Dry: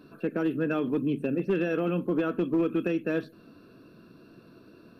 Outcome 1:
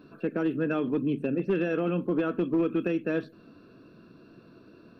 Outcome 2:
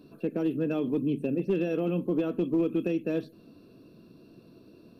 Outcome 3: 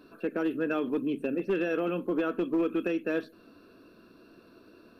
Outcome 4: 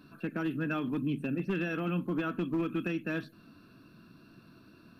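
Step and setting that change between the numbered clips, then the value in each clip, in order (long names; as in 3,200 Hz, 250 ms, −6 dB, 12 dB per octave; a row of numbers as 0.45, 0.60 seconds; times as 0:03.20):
parametric band, centre frequency: 12,000, 1,500, 140, 470 Hertz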